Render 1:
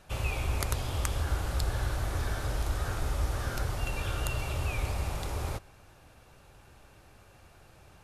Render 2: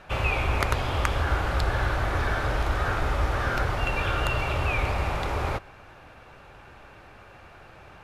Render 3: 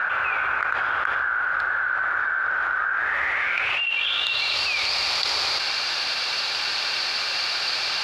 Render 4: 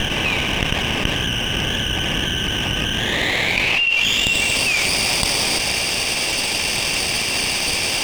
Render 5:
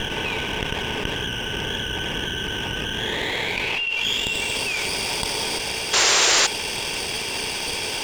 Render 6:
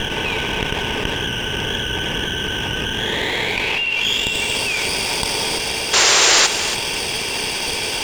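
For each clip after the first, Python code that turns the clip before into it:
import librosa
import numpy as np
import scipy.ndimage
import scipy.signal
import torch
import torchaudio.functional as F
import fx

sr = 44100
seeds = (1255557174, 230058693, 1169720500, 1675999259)

y1 = fx.curve_eq(x, sr, hz=(100.0, 1400.0, 2300.0, 8900.0), db=(0, 8, 7, -10))
y1 = F.gain(torch.from_numpy(y1), 4.0).numpy()
y2 = fx.filter_sweep_bandpass(y1, sr, from_hz=1500.0, to_hz=4600.0, start_s=2.86, end_s=4.62, q=7.9)
y2 = fx.env_flatten(y2, sr, amount_pct=100)
y2 = F.gain(torch.from_numpy(y2), 7.5).numpy()
y3 = fx.lower_of_two(y2, sr, delay_ms=0.36)
y3 = F.gain(torch.from_numpy(y3), 7.0).numpy()
y4 = fx.small_body(y3, sr, hz=(430.0, 910.0, 1500.0, 3300.0), ring_ms=30, db=9)
y4 = fx.spec_paint(y4, sr, seeds[0], shape='noise', start_s=5.93, length_s=0.54, low_hz=330.0, high_hz=7600.0, level_db=-10.0)
y4 = F.gain(torch.from_numpy(y4), -7.5).numpy()
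y5 = y4 + 10.0 ** (-11.0 / 20.0) * np.pad(y4, (int(282 * sr / 1000.0), 0))[:len(y4)]
y5 = F.gain(torch.from_numpy(y5), 4.0).numpy()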